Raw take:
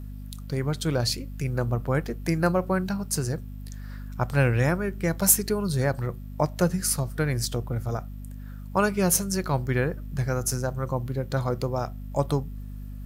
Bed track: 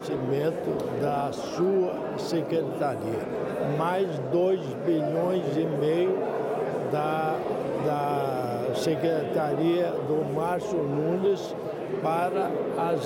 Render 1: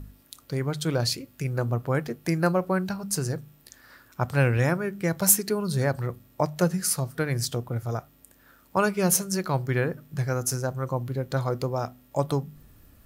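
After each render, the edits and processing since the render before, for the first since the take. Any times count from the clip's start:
hum removal 50 Hz, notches 5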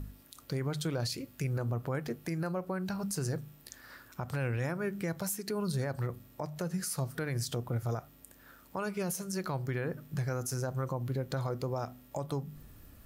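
downward compressor 6 to 1, threshold −28 dBFS, peak gain reduction 14 dB
brickwall limiter −25.5 dBFS, peak gain reduction 9.5 dB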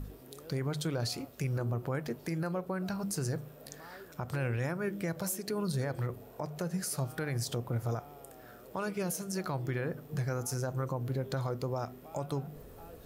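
mix in bed track −25.5 dB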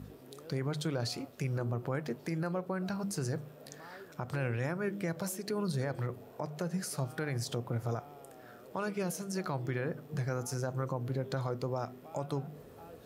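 high-pass filter 100 Hz
high-shelf EQ 10,000 Hz −9.5 dB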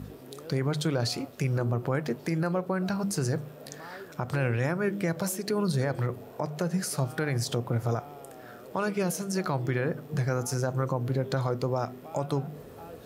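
level +6.5 dB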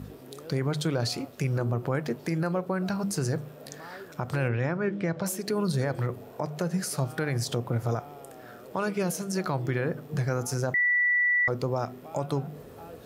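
0:04.48–0:05.26: high-frequency loss of the air 130 metres
0:10.74–0:11.48: beep over 1,960 Hz −20.5 dBFS

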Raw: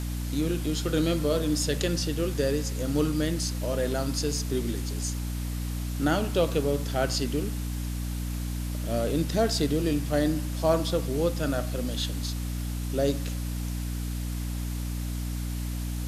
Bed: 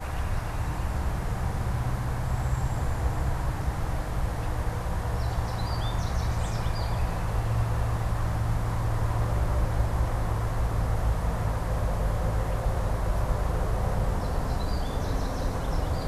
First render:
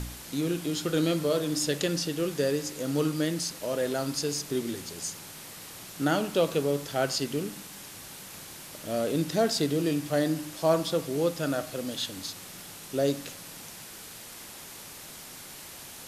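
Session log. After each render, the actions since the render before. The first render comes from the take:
hum removal 60 Hz, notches 5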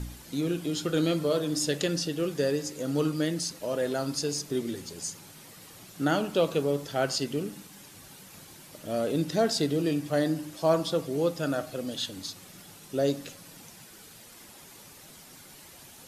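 broadband denoise 8 dB, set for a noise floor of −45 dBFS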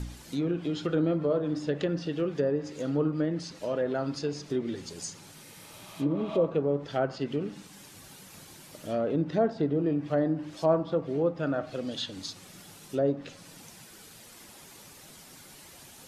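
0:05.47–0:06.41: healed spectral selection 570–9,900 Hz both
treble cut that deepens with the level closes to 1,200 Hz, closed at −23 dBFS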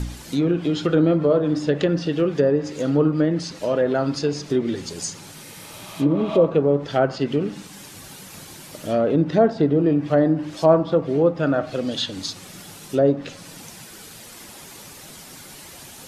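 level +9 dB

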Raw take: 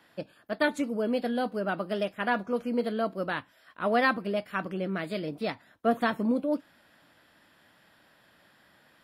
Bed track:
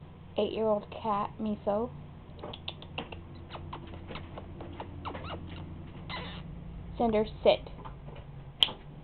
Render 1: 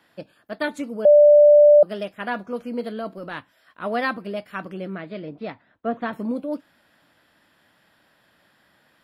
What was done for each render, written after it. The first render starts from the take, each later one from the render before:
0:01.05–0:01.83: beep over 590 Hz −8 dBFS
0:02.97–0:03.39: transient designer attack −10 dB, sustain +1 dB
0:04.95–0:06.13: high-frequency loss of the air 270 metres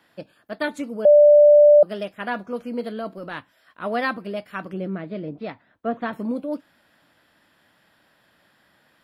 0:04.73–0:05.40: tilt shelving filter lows +4.5 dB, about 740 Hz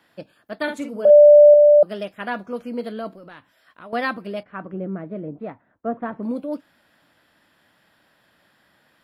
0:00.63–0:01.54: double-tracking delay 49 ms −6.5 dB
0:03.13–0:03.93: downward compressor 3 to 1, threshold −41 dBFS
0:04.43–0:06.23: low-pass filter 1,400 Hz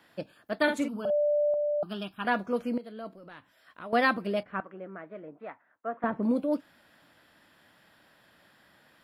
0:00.88–0:02.25: phaser with its sweep stopped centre 2,000 Hz, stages 6
0:02.78–0:03.94: fade in, from −17 dB
0:04.60–0:06.04: resonant band-pass 1,700 Hz, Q 0.91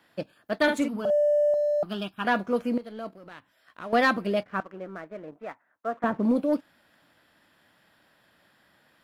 leveller curve on the samples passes 1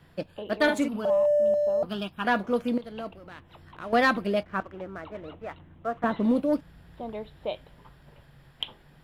mix in bed track −9 dB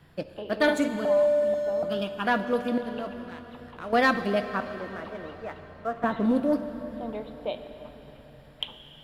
dense smooth reverb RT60 4.4 s, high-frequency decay 1×, DRR 9 dB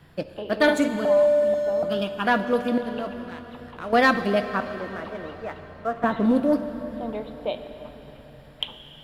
level +3.5 dB

